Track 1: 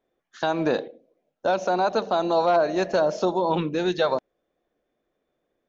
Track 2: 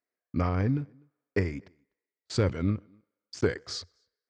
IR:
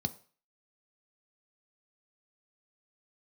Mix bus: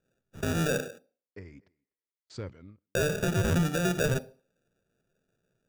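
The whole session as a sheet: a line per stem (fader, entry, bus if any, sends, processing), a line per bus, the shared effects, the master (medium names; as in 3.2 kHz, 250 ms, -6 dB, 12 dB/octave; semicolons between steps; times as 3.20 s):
+0.5 dB, 0.00 s, muted 0.99–2.95 s, send -11 dB, hum notches 50/100/150 Hz; sample-and-hold 42×
-13.0 dB, 0.00 s, no send, auto duck -22 dB, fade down 0.50 s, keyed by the first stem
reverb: on, RT60 0.40 s, pre-delay 3 ms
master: peak limiter -17.5 dBFS, peak gain reduction 8 dB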